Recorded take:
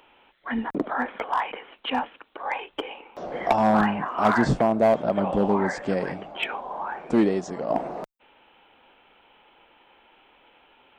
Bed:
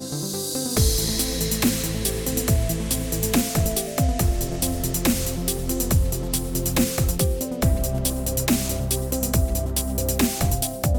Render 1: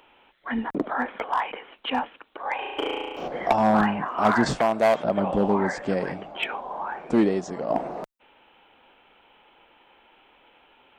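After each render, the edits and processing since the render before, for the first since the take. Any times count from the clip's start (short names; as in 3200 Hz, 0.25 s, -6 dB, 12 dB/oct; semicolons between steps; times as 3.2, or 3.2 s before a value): 2.55–3.28 flutter echo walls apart 6.1 m, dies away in 1.4 s; 4.46–5.04 tilt shelf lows -8 dB, about 700 Hz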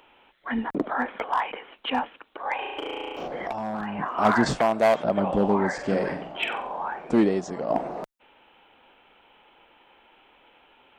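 2.64–3.99 compressor 5:1, threshold -28 dBFS; 5.74–6.89 flutter echo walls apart 7.9 m, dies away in 0.44 s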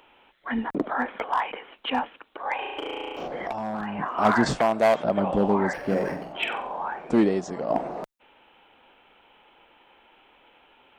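5.73–6.33 decimation joined by straight lines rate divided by 6×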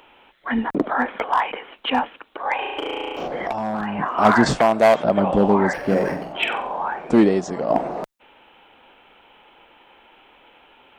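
gain +5.5 dB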